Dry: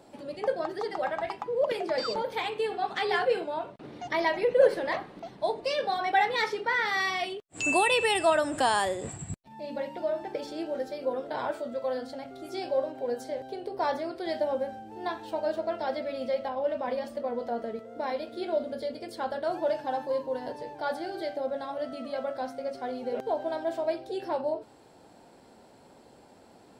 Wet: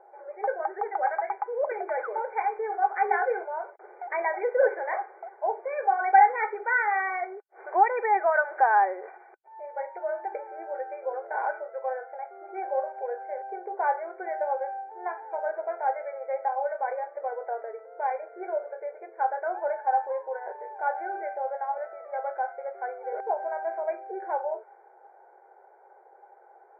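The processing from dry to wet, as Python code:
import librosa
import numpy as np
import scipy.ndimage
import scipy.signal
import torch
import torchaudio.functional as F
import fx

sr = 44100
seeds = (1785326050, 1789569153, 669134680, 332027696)

y = fx.brickwall_bandpass(x, sr, low_hz=350.0, high_hz=2400.0)
y = fx.small_body(y, sr, hz=(810.0, 1500.0), ring_ms=45, db=14)
y = fx.env_lowpass(y, sr, base_hz=1400.0, full_db=-22.0)
y = y * librosa.db_to_amplitude(-2.5)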